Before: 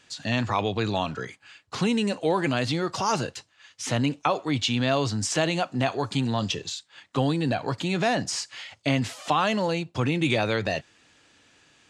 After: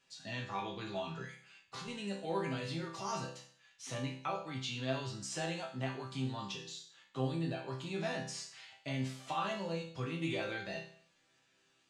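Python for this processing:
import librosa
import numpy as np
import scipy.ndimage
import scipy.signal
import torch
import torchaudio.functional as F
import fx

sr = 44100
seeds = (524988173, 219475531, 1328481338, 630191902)

y = fx.over_compress(x, sr, threshold_db=-29.0, ratio=-1.0, at=(1.07, 1.88))
y = fx.resonator_bank(y, sr, root=48, chord='major', decay_s=0.52)
y = y * librosa.db_to_amplitude(4.0)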